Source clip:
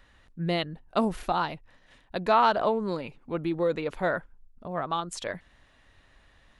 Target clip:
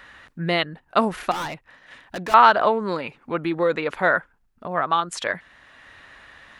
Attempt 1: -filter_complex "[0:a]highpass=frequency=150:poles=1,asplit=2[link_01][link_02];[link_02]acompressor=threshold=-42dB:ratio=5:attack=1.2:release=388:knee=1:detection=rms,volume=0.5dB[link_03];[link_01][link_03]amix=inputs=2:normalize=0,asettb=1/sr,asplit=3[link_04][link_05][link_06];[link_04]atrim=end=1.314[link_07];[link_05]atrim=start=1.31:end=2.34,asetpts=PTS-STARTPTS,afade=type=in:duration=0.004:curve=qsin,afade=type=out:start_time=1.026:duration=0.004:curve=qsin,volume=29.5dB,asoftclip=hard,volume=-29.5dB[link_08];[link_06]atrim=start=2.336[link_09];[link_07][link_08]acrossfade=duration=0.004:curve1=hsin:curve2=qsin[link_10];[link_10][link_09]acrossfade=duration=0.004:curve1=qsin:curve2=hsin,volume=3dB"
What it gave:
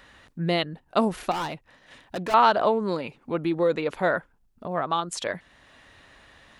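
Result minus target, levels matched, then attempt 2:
2,000 Hz band −3.5 dB
-filter_complex "[0:a]highpass=frequency=150:poles=1,equalizer=frequency=1600:width_type=o:width=1.7:gain=8.5,asplit=2[link_01][link_02];[link_02]acompressor=threshold=-42dB:ratio=5:attack=1.2:release=388:knee=1:detection=rms,volume=0.5dB[link_03];[link_01][link_03]amix=inputs=2:normalize=0,asettb=1/sr,asplit=3[link_04][link_05][link_06];[link_04]atrim=end=1.314[link_07];[link_05]atrim=start=1.31:end=2.34,asetpts=PTS-STARTPTS,afade=type=in:duration=0.004:curve=qsin,afade=type=out:start_time=1.026:duration=0.004:curve=qsin,volume=29.5dB,asoftclip=hard,volume=-29.5dB[link_08];[link_06]atrim=start=2.336[link_09];[link_07][link_08]acrossfade=duration=0.004:curve1=hsin:curve2=qsin[link_10];[link_10][link_09]acrossfade=duration=0.004:curve1=qsin:curve2=hsin,volume=3dB"

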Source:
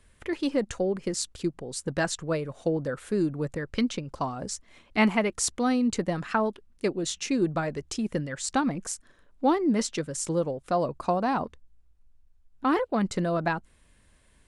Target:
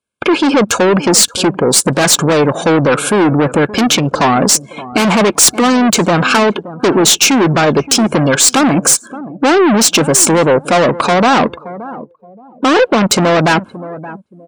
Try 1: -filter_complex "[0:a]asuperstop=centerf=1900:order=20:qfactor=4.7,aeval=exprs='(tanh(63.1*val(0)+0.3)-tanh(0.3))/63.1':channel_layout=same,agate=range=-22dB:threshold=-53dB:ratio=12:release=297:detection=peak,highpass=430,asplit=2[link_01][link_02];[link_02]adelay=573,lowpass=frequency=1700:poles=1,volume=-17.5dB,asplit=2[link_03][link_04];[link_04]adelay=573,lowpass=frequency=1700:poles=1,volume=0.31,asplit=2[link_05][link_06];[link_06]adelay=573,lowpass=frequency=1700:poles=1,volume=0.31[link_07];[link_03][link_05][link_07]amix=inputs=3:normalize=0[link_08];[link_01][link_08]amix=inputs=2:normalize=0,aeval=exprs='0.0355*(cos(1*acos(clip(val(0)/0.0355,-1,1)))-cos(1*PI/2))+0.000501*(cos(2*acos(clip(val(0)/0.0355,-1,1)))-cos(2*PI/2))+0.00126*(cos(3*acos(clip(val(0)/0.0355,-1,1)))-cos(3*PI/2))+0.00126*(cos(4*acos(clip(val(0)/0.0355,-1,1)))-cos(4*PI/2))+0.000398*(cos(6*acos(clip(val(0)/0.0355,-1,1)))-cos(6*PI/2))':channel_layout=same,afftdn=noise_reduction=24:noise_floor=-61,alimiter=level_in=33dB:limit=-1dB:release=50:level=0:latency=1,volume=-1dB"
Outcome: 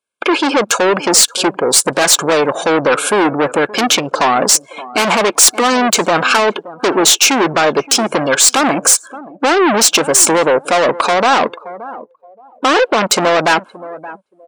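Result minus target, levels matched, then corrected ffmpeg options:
250 Hz band −5.0 dB
-filter_complex "[0:a]asuperstop=centerf=1900:order=20:qfactor=4.7,aeval=exprs='(tanh(63.1*val(0)+0.3)-tanh(0.3))/63.1':channel_layout=same,agate=range=-22dB:threshold=-53dB:ratio=12:release=297:detection=peak,highpass=180,asplit=2[link_01][link_02];[link_02]adelay=573,lowpass=frequency=1700:poles=1,volume=-17.5dB,asplit=2[link_03][link_04];[link_04]adelay=573,lowpass=frequency=1700:poles=1,volume=0.31,asplit=2[link_05][link_06];[link_06]adelay=573,lowpass=frequency=1700:poles=1,volume=0.31[link_07];[link_03][link_05][link_07]amix=inputs=3:normalize=0[link_08];[link_01][link_08]amix=inputs=2:normalize=0,aeval=exprs='0.0355*(cos(1*acos(clip(val(0)/0.0355,-1,1)))-cos(1*PI/2))+0.000501*(cos(2*acos(clip(val(0)/0.0355,-1,1)))-cos(2*PI/2))+0.00126*(cos(3*acos(clip(val(0)/0.0355,-1,1)))-cos(3*PI/2))+0.00126*(cos(4*acos(clip(val(0)/0.0355,-1,1)))-cos(4*PI/2))+0.000398*(cos(6*acos(clip(val(0)/0.0355,-1,1)))-cos(6*PI/2))':channel_layout=same,afftdn=noise_reduction=24:noise_floor=-61,alimiter=level_in=33dB:limit=-1dB:release=50:level=0:latency=1,volume=-1dB"

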